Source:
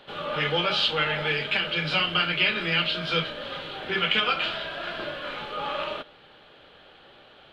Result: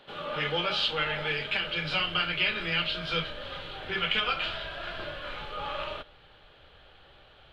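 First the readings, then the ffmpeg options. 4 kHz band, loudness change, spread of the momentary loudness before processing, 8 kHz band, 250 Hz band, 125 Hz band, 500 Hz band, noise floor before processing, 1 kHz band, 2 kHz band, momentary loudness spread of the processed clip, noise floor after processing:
−4.0 dB, −4.0 dB, 11 LU, can't be measured, −5.5 dB, −4.5 dB, −5.0 dB, −53 dBFS, −4.0 dB, −4.0 dB, 11 LU, −56 dBFS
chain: -af "asubboost=boost=7:cutoff=86,volume=-4dB"

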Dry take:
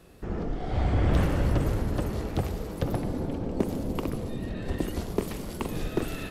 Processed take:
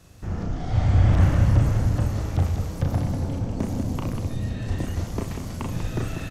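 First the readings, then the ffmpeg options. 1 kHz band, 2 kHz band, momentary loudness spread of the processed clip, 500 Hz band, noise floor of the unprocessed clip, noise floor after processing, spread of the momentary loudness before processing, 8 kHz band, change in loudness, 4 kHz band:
+1.5 dB, +1.5 dB, 12 LU, −2.5 dB, −38 dBFS, −34 dBFS, 9 LU, +3.5 dB, +5.5 dB, +1.0 dB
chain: -filter_complex "[0:a]equalizer=frequency=100:width_type=o:width=0.67:gain=11,equalizer=frequency=400:width_type=o:width=0.67:gain=-8,equalizer=frequency=6300:width_type=o:width=0.67:gain=10,aecho=1:1:34.99|192.4:0.631|0.447,acrossover=split=2700[link_01][link_02];[link_02]acompressor=threshold=-44dB:ratio=4:attack=1:release=60[link_03];[link_01][link_03]amix=inputs=2:normalize=0"

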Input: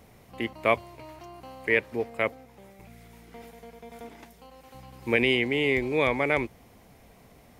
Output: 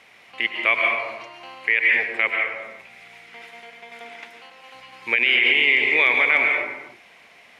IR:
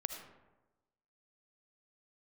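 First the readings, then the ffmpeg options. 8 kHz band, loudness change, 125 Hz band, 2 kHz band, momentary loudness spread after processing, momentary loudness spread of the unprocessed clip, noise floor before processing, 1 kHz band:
can't be measured, +8.0 dB, below −10 dB, +11.5 dB, 17 LU, 22 LU, −55 dBFS, +3.5 dB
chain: -filter_complex "[0:a]bandpass=frequency=2400:width_type=q:width=1.7:csg=0[link_01];[1:a]atrim=start_sample=2205,afade=type=out:start_time=0.35:duration=0.01,atrim=end_sample=15876,asetrate=23814,aresample=44100[link_02];[link_01][link_02]afir=irnorm=-1:irlink=0,alimiter=level_in=19.5dB:limit=-1dB:release=50:level=0:latency=1,volume=-6.5dB"

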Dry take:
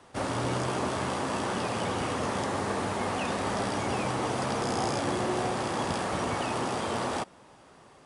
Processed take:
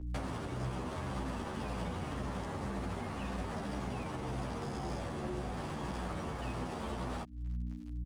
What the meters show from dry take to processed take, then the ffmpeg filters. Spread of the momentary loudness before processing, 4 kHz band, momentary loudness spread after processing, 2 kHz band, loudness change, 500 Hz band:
2 LU, −13.0 dB, 1 LU, −11.5 dB, −9.5 dB, −11.5 dB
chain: -filter_complex "[0:a]bass=frequency=250:gain=-5,treble=frequency=4000:gain=-4,aeval=exprs='sgn(val(0))*max(abs(val(0))-0.00422,0)':channel_layout=same,aeval=exprs='val(0)+0.00355*(sin(2*PI*60*n/s)+sin(2*PI*2*60*n/s)/2+sin(2*PI*3*60*n/s)/3+sin(2*PI*4*60*n/s)/4+sin(2*PI*5*60*n/s)/5)':channel_layout=same,alimiter=level_in=3.5dB:limit=-24dB:level=0:latency=1:release=87,volume=-3.5dB,acrossover=split=180[link_01][link_02];[link_02]acompressor=threshold=-54dB:ratio=5[link_03];[link_01][link_03]amix=inputs=2:normalize=0,equalizer=frequency=110:width=6.2:gain=-12,acompressor=threshold=-47dB:ratio=6,asplit=2[link_04][link_05];[link_05]adelay=10.9,afreqshift=-1.9[link_06];[link_04][link_06]amix=inputs=2:normalize=1,volume=16dB"

